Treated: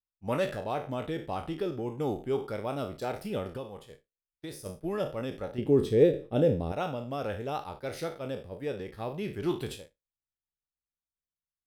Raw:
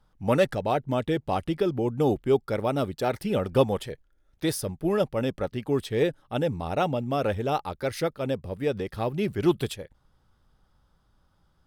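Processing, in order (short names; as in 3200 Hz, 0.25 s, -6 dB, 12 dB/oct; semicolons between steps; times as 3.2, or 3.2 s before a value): spectral trails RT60 0.38 s; 3.53–4.66 compressor 3:1, threshold -31 dBFS, peak gain reduction 12.5 dB; 5.58–6.72 resonant low shelf 680 Hz +9 dB, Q 1.5; expander -31 dBFS; gain -8.5 dB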